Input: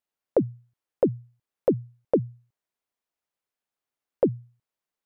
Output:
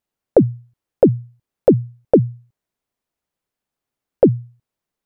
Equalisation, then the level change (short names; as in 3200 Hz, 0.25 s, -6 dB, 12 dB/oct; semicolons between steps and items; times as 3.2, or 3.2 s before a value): low shelf 370 Hz +10.5 dB; dynamic EQ 1000 Hz, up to +6 dB, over -34 dBFS, Q 0.9; +3.5 dB